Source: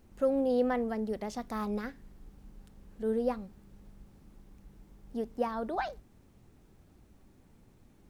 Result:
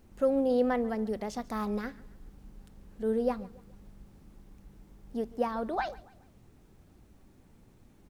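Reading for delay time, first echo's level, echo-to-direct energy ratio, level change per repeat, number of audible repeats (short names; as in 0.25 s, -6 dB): 0.141 s, -21.0 dB, -20.0 dB, -7.5 dB, 2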